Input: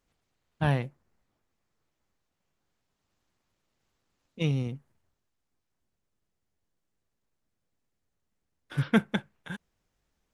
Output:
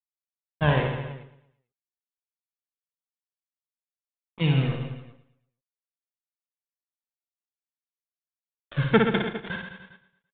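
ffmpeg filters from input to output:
-filter_complex "[0:a]acrusher=bits=5:mix=0:aa=0.5,aphaser=in_gain=1:out_gain=1:delay=2.9:decay=0.49:speed=0.49:type=triangular,asplit=2[a][b];[b]aecho=0:1:112|224|336|448:0.178|0.08|0.036|0.0162[c];[a][c]amix=inputs=2:normalize=0,aresample=8000,aresample=44100,asplit=2[d][e];[e]aecho=0:1:60|129|208.4|299.6|404.5:0.631|0.398|0.251|0.158|0.1[f];[d][f]amix=inputs=2:normalize=0,volume=3.5dB"

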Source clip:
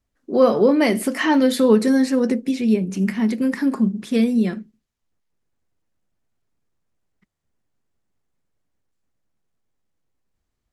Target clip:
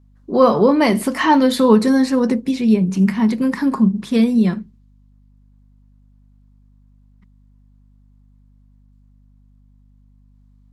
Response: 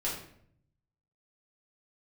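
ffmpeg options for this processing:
-af "equalizer=f=160:t=o:w=0.67:g=10,equalizer=f=1k:t=o:w=0.67:g=10,equalizer=f=4k:t=o:w=0.67:g=4,aeval=exprs='val(0)+0.00316*(sin(2*PI*50*n/s)+sin(2*PI*2*50*n/s)/2+sin(2*PI*3*50*n/s)/3+sin(2*PI*4*50*n/s)/4+sin(2*PI*5*50*n/s)/5)':c=same"

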